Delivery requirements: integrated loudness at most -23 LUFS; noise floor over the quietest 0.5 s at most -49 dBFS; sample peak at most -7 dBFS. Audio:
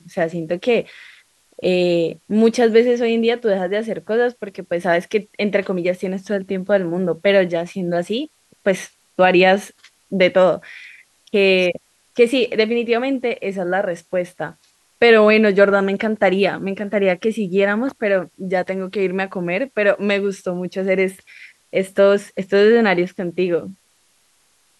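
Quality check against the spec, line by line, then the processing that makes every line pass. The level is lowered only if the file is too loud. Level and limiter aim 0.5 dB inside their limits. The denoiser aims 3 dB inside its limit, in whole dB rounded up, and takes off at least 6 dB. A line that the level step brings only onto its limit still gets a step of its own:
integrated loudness -18.0 LUFS: fail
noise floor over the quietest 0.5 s -60 dBFS: pass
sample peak -1.5 dBFS: fail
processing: trim -5.5 dB; peak limiter -7.5 dBFS

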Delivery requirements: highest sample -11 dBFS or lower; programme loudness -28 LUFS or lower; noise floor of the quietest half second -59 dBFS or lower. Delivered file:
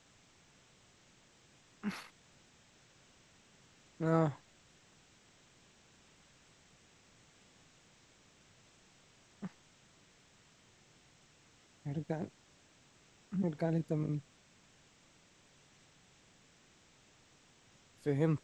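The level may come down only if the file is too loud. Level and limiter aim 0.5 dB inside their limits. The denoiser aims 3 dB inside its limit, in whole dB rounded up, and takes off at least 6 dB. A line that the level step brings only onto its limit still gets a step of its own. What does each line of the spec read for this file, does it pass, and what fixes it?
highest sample -16.5 dBFS: pass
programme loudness -37.5 LUFS: pass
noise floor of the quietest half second -66 dBFS: pass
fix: none needed

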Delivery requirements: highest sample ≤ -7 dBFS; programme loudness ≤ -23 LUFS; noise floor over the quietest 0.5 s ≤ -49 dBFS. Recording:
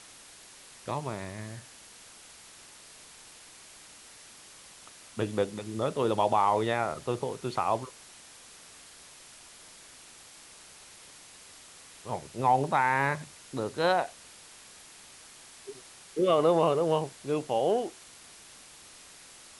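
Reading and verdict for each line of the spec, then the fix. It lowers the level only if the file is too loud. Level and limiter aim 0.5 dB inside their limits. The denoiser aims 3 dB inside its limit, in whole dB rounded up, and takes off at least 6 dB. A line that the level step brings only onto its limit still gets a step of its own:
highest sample -12.5 dBFS: pass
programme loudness -29.0 LUFS: pass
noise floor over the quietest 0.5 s -52 dBFS: pass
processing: none needed

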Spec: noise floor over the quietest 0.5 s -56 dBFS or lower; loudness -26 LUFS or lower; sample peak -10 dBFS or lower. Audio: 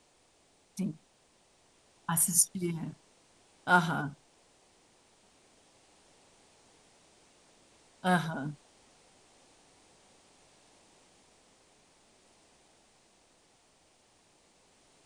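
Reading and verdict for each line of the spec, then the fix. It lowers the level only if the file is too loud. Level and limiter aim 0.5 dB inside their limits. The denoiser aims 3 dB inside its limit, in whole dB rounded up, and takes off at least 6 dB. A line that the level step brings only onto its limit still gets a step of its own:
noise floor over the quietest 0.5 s -67 dBFS: pass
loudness -30.0 LUFS: pass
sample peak -9.5 dBFS: fail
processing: peak limiter -10.5 dBFS

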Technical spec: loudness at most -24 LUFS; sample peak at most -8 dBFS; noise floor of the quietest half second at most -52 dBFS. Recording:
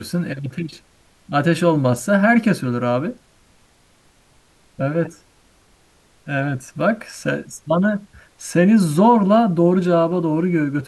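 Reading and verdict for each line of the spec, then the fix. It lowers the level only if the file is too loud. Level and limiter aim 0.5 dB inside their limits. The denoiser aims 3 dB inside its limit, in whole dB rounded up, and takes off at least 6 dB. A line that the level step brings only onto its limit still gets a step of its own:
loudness -18.5 LUFS: fail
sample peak -3.5 dBFS: fail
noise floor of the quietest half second -56 dBFS: pass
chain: trim -6 dB

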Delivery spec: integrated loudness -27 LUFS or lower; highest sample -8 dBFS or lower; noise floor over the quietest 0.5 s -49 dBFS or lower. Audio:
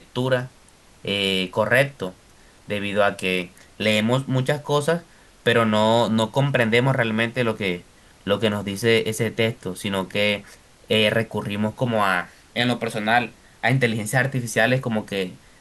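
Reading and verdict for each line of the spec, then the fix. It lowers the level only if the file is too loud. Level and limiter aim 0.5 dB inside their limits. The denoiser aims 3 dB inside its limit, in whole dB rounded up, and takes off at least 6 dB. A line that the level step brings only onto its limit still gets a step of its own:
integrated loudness -22.0 LUFS: fail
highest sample -5.5 dBFS: fail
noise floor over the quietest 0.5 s -52 dBFS: pass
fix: trim -5.5 dB

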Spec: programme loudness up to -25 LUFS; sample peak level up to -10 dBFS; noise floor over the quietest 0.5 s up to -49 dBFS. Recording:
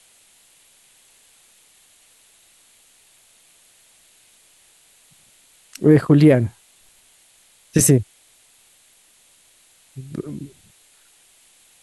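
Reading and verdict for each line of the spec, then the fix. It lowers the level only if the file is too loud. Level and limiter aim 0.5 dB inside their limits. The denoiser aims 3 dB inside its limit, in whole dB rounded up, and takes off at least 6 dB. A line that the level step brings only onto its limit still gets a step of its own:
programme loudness -17.5 LUFS: fail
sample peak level -2.5 dBFS: fail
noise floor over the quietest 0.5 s -55 dBFS: pass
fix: trim -8 dB

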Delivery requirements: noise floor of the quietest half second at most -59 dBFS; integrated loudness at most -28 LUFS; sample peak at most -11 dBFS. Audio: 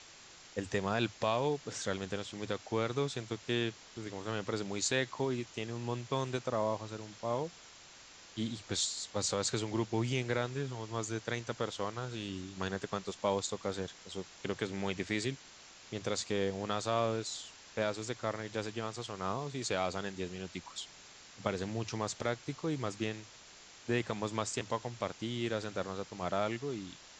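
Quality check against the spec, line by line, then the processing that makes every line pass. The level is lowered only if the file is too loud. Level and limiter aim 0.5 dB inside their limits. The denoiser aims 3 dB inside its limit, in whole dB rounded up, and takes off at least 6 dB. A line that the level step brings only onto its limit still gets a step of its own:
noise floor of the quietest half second -55 dBFS: fail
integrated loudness -36.5 LUFS: pass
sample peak -14.5 dBFS: pass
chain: noise reduction 7 dB, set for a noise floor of -55 dBFS

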